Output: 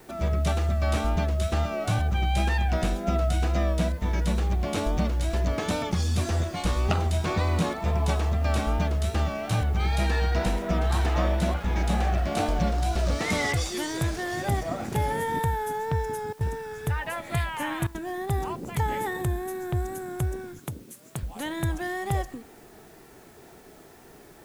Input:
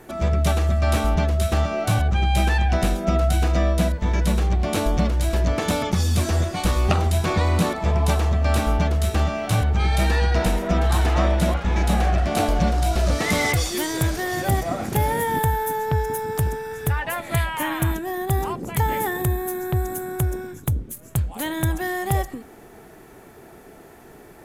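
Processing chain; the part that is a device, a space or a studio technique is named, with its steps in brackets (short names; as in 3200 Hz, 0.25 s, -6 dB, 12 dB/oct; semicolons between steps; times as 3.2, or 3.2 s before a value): worn cassette (LPF 9300 Hz 12 dB/oct; wow and flutter; level dips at 16.33/17.87, 75 ms -17 dB; white noise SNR 33 dB); 20.59–21.23 HPF 180 Hz 12 dB/oct; gain -5 dB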